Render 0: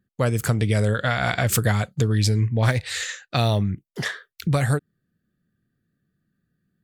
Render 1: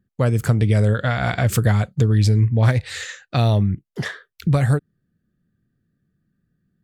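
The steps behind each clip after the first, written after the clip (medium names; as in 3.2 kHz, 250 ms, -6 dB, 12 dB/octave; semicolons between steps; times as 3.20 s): tilt EQ -1.5 dB/octave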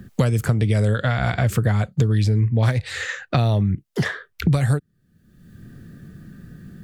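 three bands compressed up and down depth 100%; trim -2 dB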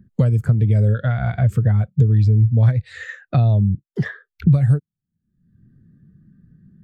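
spectral contrast expander 1.5:1; trim -3 dB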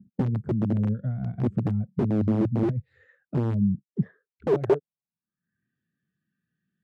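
integer overflow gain 9.5 dB; band-pass sweep 210 Hz -> 2.8 kHz, 4.28–5.78 s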